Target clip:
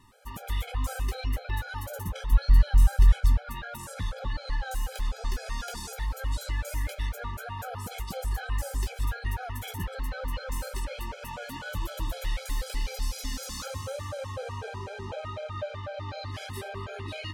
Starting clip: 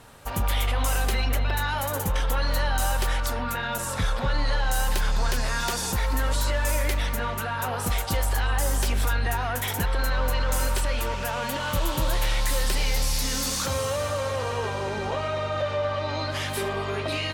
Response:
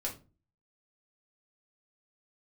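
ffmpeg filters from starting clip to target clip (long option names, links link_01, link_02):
-filter_complex "[0:a]asplit=3[link_01][link_02][link_03];[link_01]afade=type=out:start_time=2.31:duration=0.02[link_04];[link_02]asubboost=boost=9:cutoff=160,afade=type=in:start_time=2.31:duration=0.02,afade=type=out:start_time=3.44:duration=0.02[link_05];[link_03]afade=type=in:start_time=3.44:duration=0.02[link_06];[link_04][link_05][link_06]amix=inputs=3:normalize=0,asplit=2[link_07][link_08];[1:a]atrim=start_sample=2205,lowpass=7600,lowshelf=frequency=65:gain=9.5[link_09];[link_08][link_09]afir=irnorm=-1:irlink=0,volume=-10.5dB[link_10];[link_07][link_10]amix=inputs=2:normalize=0,afftfilt=real='re*gt(sin(2*PI*4*pts/sr)*(1-2*mod(floor(b*sr/1024/430),2)),0)':imag='im*gt(sin(2*PI*4*pts/sr)*(1-2*mod(floor(b*sr/1024/430),2)),0)':win_size=1024:overlap=0.75,volume=-8.5dB"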